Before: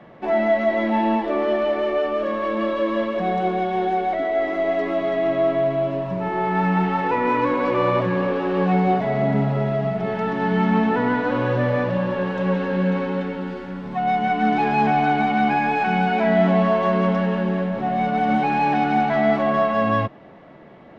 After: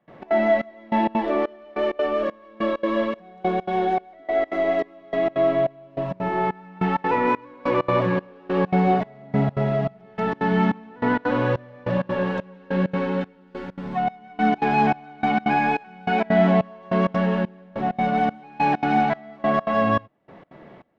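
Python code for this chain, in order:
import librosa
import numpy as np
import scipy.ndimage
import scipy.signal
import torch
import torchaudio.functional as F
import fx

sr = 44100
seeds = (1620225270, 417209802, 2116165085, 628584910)

y = fx.step_gate(x, sr, bpm=196, pattern='.xx.xxxx...', floor_db=-24.0, edge_ms=4.5)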